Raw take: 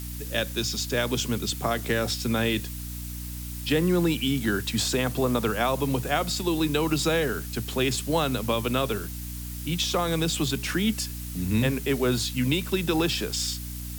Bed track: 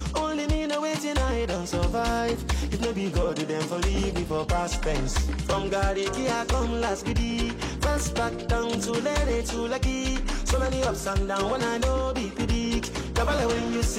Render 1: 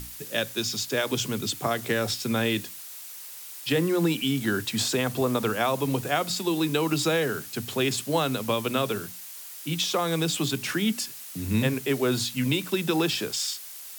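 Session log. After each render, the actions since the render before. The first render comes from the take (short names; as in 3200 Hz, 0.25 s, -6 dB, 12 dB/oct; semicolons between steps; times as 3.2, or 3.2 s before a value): notches 60/120/180/240/300 Hz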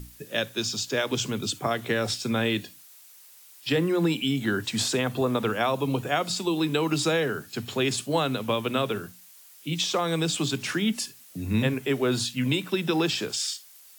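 noise print and reduce 10 dB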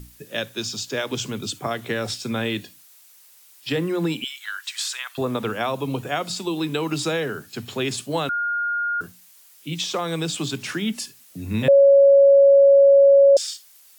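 4.24–5.18 HPF 1200 Hz 24 dB/oct; 8.29–9.01 bleep 1420 Hz -21 dBFS; 11.68–13.37 bleep 556 Hz -9 dBFS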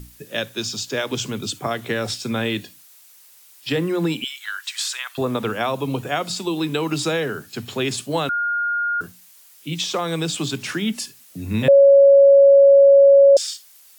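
gain +2 dB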